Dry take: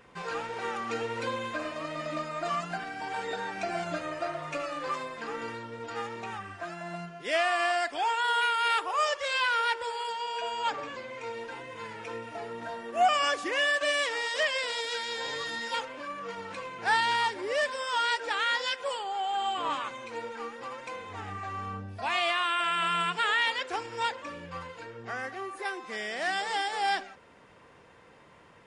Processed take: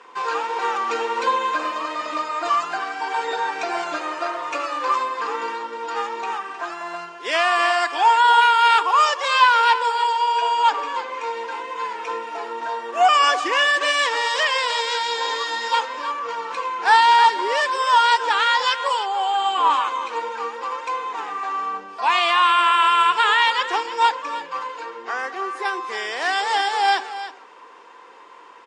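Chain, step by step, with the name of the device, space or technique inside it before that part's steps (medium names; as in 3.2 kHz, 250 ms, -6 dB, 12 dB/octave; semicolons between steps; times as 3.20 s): phone speaker on a table (cabinet simulation 340–8100 Hz, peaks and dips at 620 Hz -8 dB, 1 kHz +9 dB, 2 kHz -3 dB); delay 312 ms -12.5 dB; trim +9 dB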